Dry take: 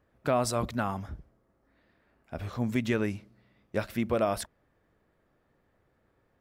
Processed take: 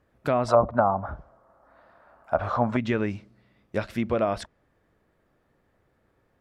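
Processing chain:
0:00.48–0:02.77: flat-topped bell 910 Hz +15.5 dB
treble cut that deepens with the level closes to 620 Hz, closed at −17 dBFS
level +2.5 dB

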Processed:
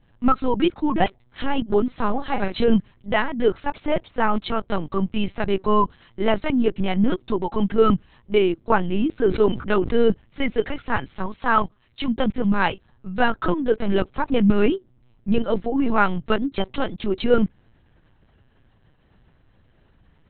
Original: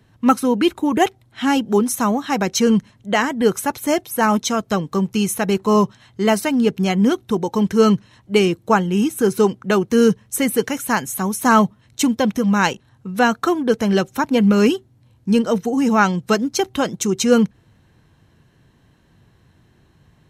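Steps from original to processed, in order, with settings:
0:01.94–0:02.77: double-tracking delay 40 ms −6.5 dB
0:11.26–0:12.09: low-shelf EQ 470 Hz −8 dB
linear-prediction vocoder at 8 kHz pitch kept
0:09.19–0:09.91: level that may fall only so fast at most 110 dB per second
level −2.5 dB

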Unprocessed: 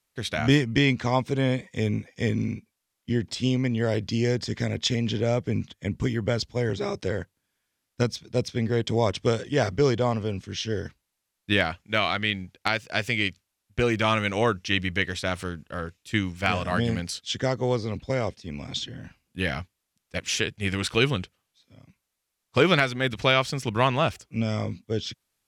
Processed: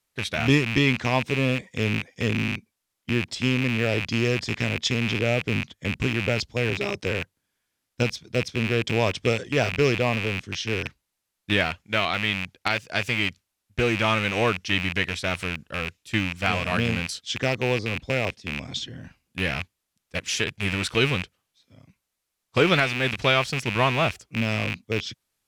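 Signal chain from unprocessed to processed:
loose part that buzzes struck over −33 dBFS, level −16 dBFS

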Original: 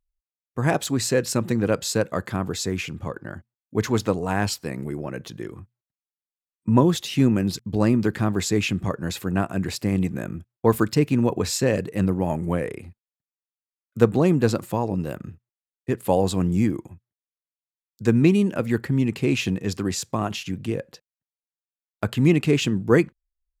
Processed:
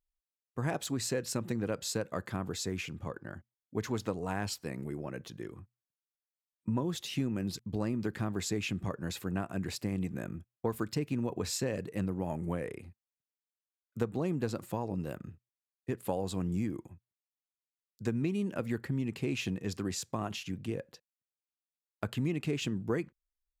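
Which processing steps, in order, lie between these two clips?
downward compressor 5 to 1, threshold −20 dBFS, peak gain reduction 10 dB
level −8.5 dB

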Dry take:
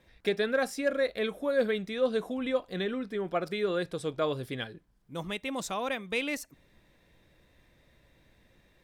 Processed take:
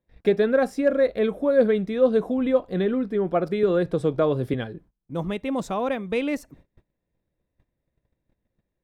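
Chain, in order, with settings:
noise gate −58 dBFS, range −25 dB
tilt shelving filter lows +8 dB, about 1,400 Hz
0:03.63–0:04.54: multiband upward and downward compressor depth 70%
level +2.5 dB

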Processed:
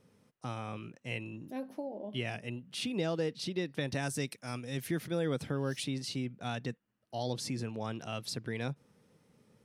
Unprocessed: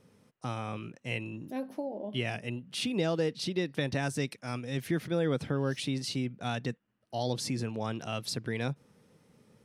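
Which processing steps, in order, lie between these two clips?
0:03.88–0:05.84: high-shelf EQ 7,100 Hz +9.5 dB
level −3.5 dB

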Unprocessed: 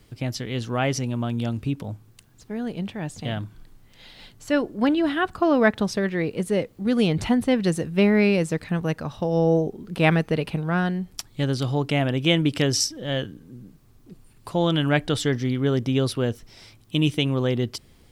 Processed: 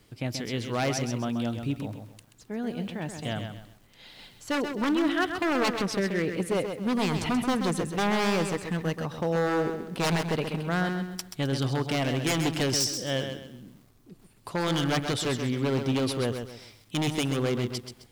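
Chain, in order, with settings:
wave folding −17.5 dBFS
low-shelf EQ 110 Hz −8 dB
feedback echo at a low word length 131 ms, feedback 35%, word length 9 bits, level −7 dB
level −2 dB

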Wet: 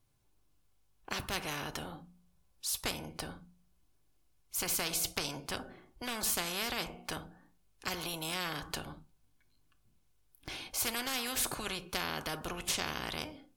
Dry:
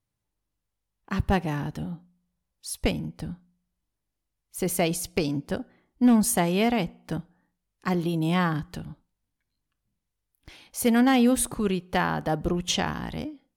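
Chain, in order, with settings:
notch filter 1,900 Hz, Q 11
convolution reverb RT60 0.25 s, pre-delay 3 ms, DRR 9.5 dB
every bin compressed towards the loudest bin 4 to 1
level −7 dB

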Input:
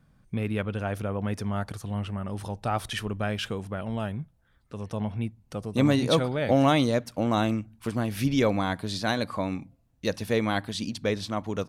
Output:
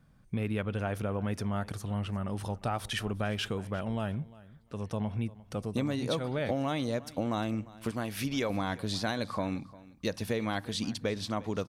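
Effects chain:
0:07.91–0:08.50: low-shelf EQ 350 Hz −8.5 dB
downward compressor 12 to 1, threshold −26 dBFS, peak gain reduction 10.5 dB
on a send: repeating echo 351 ms, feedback 17%, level −20 dB
on the sum: level −1 dB

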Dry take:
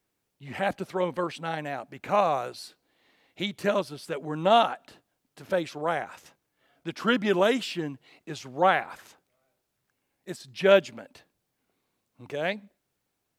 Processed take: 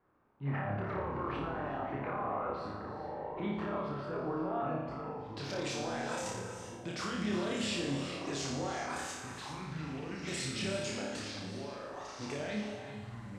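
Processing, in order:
low-pass filter sweep 1,200 Hz → 7,900 Hz, 0:04.54–0:05.74
time-frequency box erased 0:04.66–0:05.34, 670–4,200 Hz
brickwall limiter −36 dBFS, peak gain reduction 30.5 dB
flutter between parallel walls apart 4.9 metres, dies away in 0.78 s
delay with pitch and tempo change per echo 86 ms, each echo −5 semitones, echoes 3, each echo −6 dB
on a send at −8 dB: linear-phase brick-wall high-pass 160 Hz + convolution reverb, pre-delay 3 ms
on the sum: level +3.5 dB

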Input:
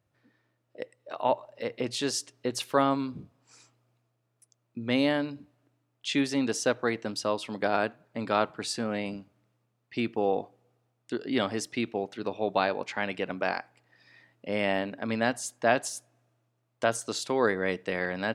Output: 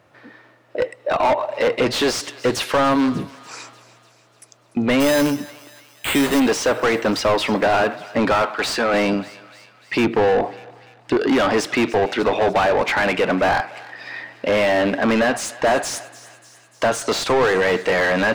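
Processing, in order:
0:08.35–0:08.94: high-pass filter 750 Hz 6 dB per octave
0:10.04–0:11.17: spectral tilt −2 dB per octave
downward compressor, threshold −24 dBFS, peak gain reduction 7.5 dB
mid-hump overdrive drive 34 dB, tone 1,600 Hz, clips at −9 dBFS
0:05.00–0:06.40: sample-rate reduction 5,600 Hz, jitter 0%
feedback echo with a high-pass in the loop 295 ms, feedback 63%, high-pass 1,200 Hz, level −17 dB
level +1.5 dB

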